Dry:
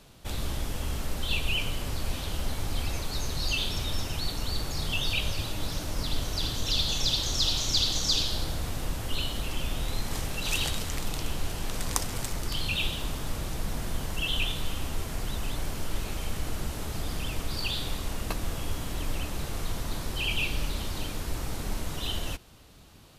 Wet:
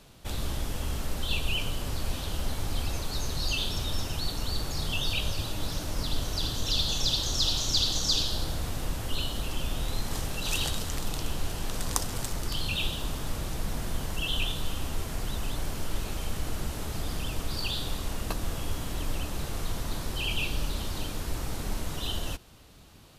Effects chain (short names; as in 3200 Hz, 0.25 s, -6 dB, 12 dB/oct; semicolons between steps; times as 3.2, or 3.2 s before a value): dynamic EQ 2200 Hz, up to -6 dB, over -49 dBFS, Q 3.2